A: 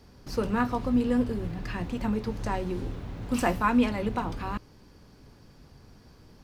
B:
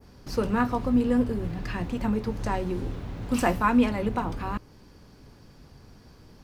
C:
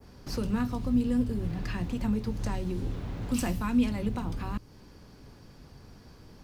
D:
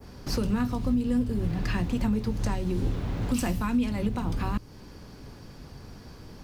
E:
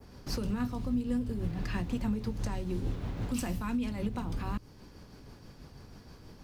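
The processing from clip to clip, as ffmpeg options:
-af "adynamicequalizer=threshold=0.00316:dfrequency=4100:dqfactor=0.74:tfrequency=4100:tqfactor=0.74:attack=5:release=100:ratio=0.375:range=2:mode=cutabove:tftype=bell,volume=1.26"
-filter_complex "[0:a]acrossover=split=260|3000[s0][s1][s2];[s1]acompressor=threshold=0.00794:ratio=2.5[s3];[s0][s3][s2]amix=inputs=3:normalize=0"
-af "alimiter=limit=0.0668:level=0:latency=1:release=352,volume=2"
-af "tremolo=f=6.2:d=0.32,volume=0.596"

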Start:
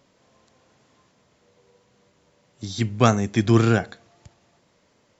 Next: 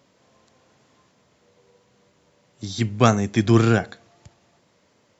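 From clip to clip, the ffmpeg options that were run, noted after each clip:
-af "highpass=61,volume=1.12"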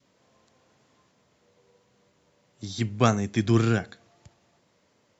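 -af "adynamicequalizer=threshold=0.0178:dfrequency=730:dqfactor=0.91:tfrequency=730:tqfactor=0.91:attack=5:release=100:ratio=0.375:range=3:mode=cutabove:tftype=bell,volume=0.596"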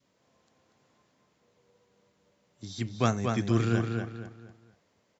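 -filter_complex "[0:a]asplit=2[s0][s1];[s1]adelay=237,lowpass=f=3800:p=1,volume=0.631,asplit=2[s2][s3];[s3]adelay=237,lowpass=f=3800:p=1,volume=0.35,asplit=2[s4][s5];[s5]adelay=237,lowpass=f=3800:p=1,volume=0.35,asplit=2[s6][s7];[s7]adelay=237,lowpass=f=3800:p=1,volume=0.35[s8];[s0][s2][s4][s6][s8]amix=inputs=5:normalize=0,volume=0.531"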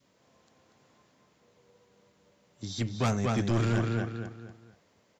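-af "asoftclip=type=tanh:threshold=0.0531,volume=1.58"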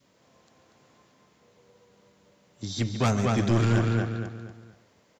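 -af "aecho=1:1:141:0.251,volume=1.5"

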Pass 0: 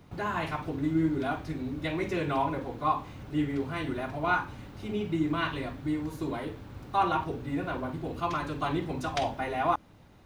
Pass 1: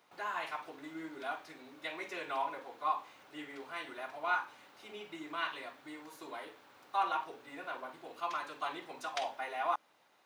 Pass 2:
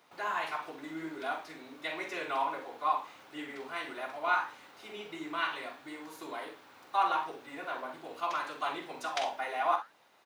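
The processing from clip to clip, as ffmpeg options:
-af "highpass=690,volume=0.596"
-filter_complex "[0:a]asplit=2[s0][s1];[s1]aecho=0:1:44|63:0.299|0.237[s2];[s0][s2]amix=inputs=2:normalize=0,flanger=delay=5.5:depth=8.7:regen=-78:speed=1.5:shape=triangular,volume=2.51"

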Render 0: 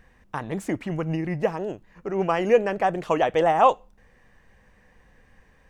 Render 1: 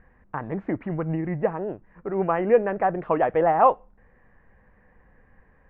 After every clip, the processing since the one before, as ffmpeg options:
-af "lowpass=f=1900:w=0.5412,lowpass=f=1900:w=1.3066"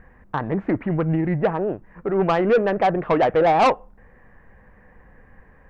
-af "asoftclip=type=tanh:threshold=0.112,volume=2.24"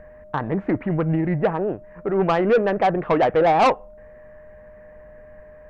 -af "aeval=exprs='val(0)+0.00708*sin(2*PI*610*n/s)':c=same"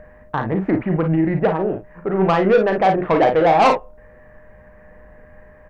-af "aecho=1:1:37|53:0.422|0.376,volume=1.26"

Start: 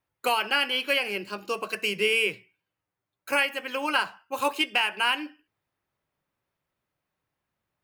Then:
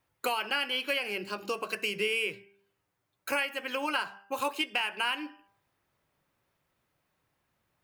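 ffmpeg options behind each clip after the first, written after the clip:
-af "bandreject=f=198.7:t=h:w=4,bandreject=f=397.4:t=h:w=4,bandreject=f=596.1:t=h:w=4,bandreject=f=794.8:t=h:w=4,bandreject=f=993.5:t=h:w=4,bandreject=f=1192.2:t=h:w=4,bandreject=f=1390.9:t=h:w=4,bandreject=f=1589.6:t=h:w=4,acompressor=threshold=0.00708:ratio=2,volume=2"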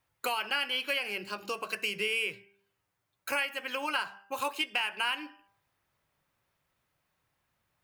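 -af "equalizer=f=320:t=o:w=1.9:g=-5"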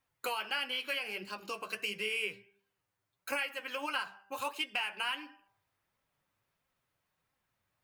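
-af "flanger=delay=3.7:depth=6.8:regen=47:speed=1.5:shape=sinusoidal"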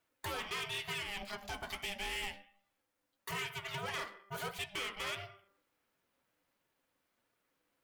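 -af "aeval=exprs='(tanh(79.4*val(0)+0.35)-tanh(0.35))/79.4':c=same,aeval=exprs='val(0)*sin(2*PI*400*n/s)':c=same,volume=1.78"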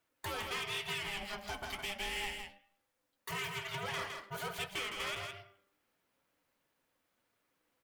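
-af "aecho=1:1:162:0.531"

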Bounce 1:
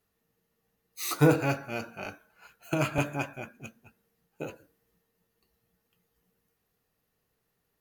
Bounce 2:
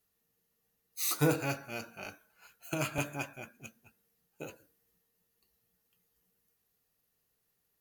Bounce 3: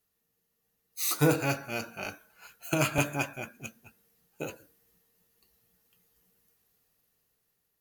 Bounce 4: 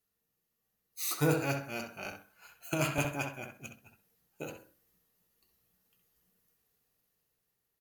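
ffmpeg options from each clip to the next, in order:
-af "highshelf=f=3500:g=10.5,volume=0.447"
-af "dynaudnorm=f=530:g=5:m=2.24"
-filter_complex "[0:a]asplit=2[s0][s1];[s1]adelay=65,lowpass=f=2700:p=1,volume=0.562,asplit=2[s2][s3];[s3]adelay=65,lowpass=f=2700:p=1,volume=0.25,asplit=2[s4][s5];[s5]adelay=65,lowpass=f=2700:p=1,volume=0.25[s6];[s0][s2][s4][s6]amix=inputs=4:normalize=0,volume=0.562"

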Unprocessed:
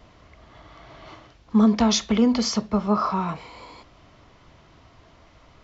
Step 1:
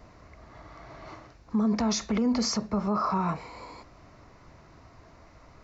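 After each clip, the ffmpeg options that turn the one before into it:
-af "equalizer=f=3200:t=o:w=0.41:g=-13.5,alimiter=limit=0.112:level=0:latency=1:release=39"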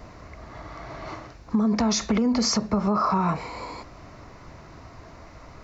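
-af "acompressor=threshold=0.0447:ratio=6,volume=2.51"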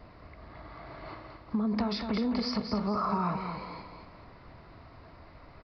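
-af "aecho=1:1:221|442|663|884:0.447|0.156|0.0547|0.0192,aresample=11025,aresample=44100,volume=0.422"

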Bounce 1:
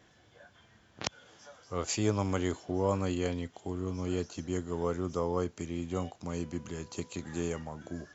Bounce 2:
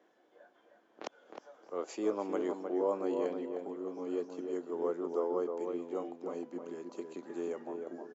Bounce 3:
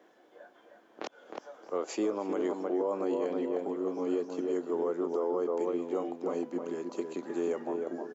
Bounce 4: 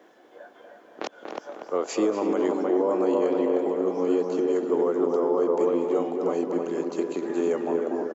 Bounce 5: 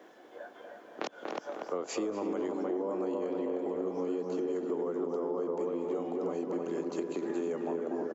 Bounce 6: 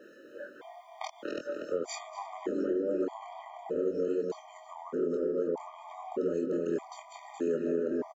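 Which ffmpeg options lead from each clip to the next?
-filter_complex "[0:a]highpass=f=320:w=0.5412,highpass=f=320:w=1.3066,tiltshelf=f=1500:g=9.5,asplit=2[s0][s1];[s1]adelay=310,lowpass=f=1500:p=1,volume=0.596,asplit=2[s2][s3];[s3]adelay=310,lowpass=f=1500:p=1,volume=0.32,asplit=2[s4][s5];[s5]adelay=310,lowpass=f=1500:p=1,volume=0.32,asplit=2[s6][s7];[s7]adelay=310,lowpass=f=1500:p=1,volume=0.32[s8];[s0][s2][s4][s6][s8]amix=inputs=5:normalize=0,volume=0.398"
-af "alimiter=level_in=1.78:limit=0.0631:level=0:latency=1:release=122,volume=0.562,volume=2.24"
-filter_complex "[0:a]asplit=2[s0][s1];[s1]adelay=239,lowpass=f=2000:p=1,volume=0.562,asplit=2[s2][s3];[s3]adelay=239,lowpass=f=2000:p=1,volume=0.5,asplit=2[s4][s5];[s5]adelay=239,lowpass=f=2000:p=1,volume=0.5,asplit=2[s6][s7];[s7]adelay=239,lowpass=f=2000:p=1,volume=0.5,asplit=2[s8][s9];[s9]adelay=239,lowpass=f=2000:p=1,volume=0.5,asplit=2[s10][s11];[s11]adelay=239,lowpass=f=2000:p=1,volume=0.5[s12];[s0][s2][s4][s6][s8][s10][s12]amix=inputs=7:normalize=0,volume=2.11"
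-filter_complex "[0:a]acrossover=split=200[s0][s1];[s0]alimiter=level_in=6.31:limit=0.0631:level=0:latency=1,volume=0.158[s2];[s1]acompressor=threshold=0.0251:ratio=6[s3];[s2][s3]amix=inputs=2:normalize=0"
-filter_complex "[0:a]asoftclip=type=tanh:threshold=0.0794,asplit=2[s0][s1];[s1]adelay=24,volume=0.473[s2];[s0][s2]amix=inputs=2:normalize=0,afftfilt=real='re*gt(sin(2*PI*0.81*pts/sr)*(1-2*mod(floor(b*sr/1024/620),2)),0)':imag='im*gt(sin(2*PI*0.81*pts/sr)*(1-2*mod(floor(b*sr/1024/620),2)),0)':win_size=1024:overlap=0.75,volume=1.41"

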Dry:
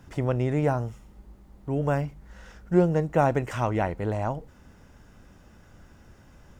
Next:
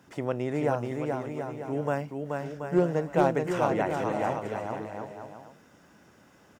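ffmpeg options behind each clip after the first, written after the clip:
-filter_complex "[0:a]highpass=200,asoftclip=type=hard:threshold=0.266,asplit=2[s0][s1];[s1]aecho=0:1:430|731|941.7|1089|1192:0.631|0.398|0.251|0.158|0.1[s2];[s0][s2]amix=inputs=2:normalize=0,volume=0.794"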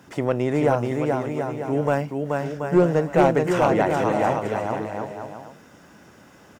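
-af "aeval=exprs='0.355*sin(PI/2*1.58*val(0)/0.355)':c=same"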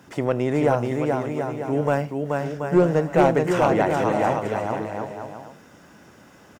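-af "aecho=1:1:77:0.0944"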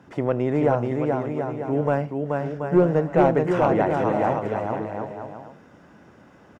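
-af "lowpass=f=1600:p=1"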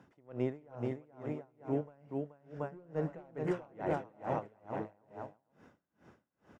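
-af "aeval=exprs='val(0)*pow(10,-33*(0.5-0.5*cos(2*PI*2.3*n/s))/20)':c=same,volume=0.398"

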